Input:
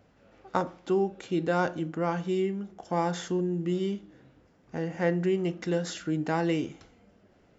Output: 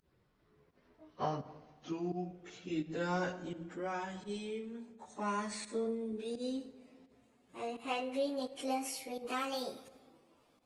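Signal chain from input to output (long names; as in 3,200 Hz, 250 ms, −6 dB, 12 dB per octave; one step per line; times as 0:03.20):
gliding playback speed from 71% → 171%
high-shelf EQ 2,800 Hz +7 dB
time stretch by phase vocoder 1.7×
fake sidechain pumping 85 BPM, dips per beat 1, −24 dB, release 102 ms
rectangular room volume 1,800 cubic metres, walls mixed, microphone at 0.39 metres
level −7 dB
Opus 32 kbit/s 48,000 Hz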